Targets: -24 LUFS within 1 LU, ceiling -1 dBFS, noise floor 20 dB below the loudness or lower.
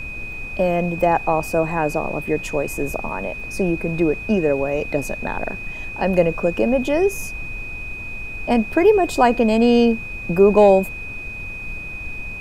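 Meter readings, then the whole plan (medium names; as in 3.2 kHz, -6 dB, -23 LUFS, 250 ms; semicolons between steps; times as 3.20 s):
steady tone 2.5 kHz; tone level -30 dBFS; noise floor -32 dBFS; noise floor target -40 dBFS; loudness -20.0 LUFS; peak level -2.5 dBFS; loudness target -24.0 LUFS
-> band-stop 2.5 kHz, Q 30; noise print and reduce 8 dB; trim -4 dB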